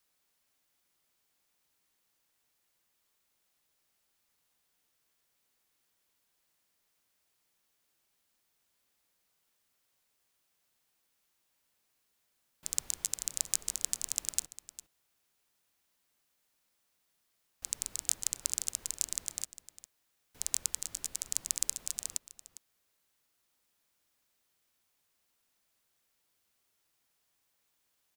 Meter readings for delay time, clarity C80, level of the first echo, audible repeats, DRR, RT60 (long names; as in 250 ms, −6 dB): 404 ms, no reverb audible, −15.5 dB, 1, no reverb audible, no reverb audible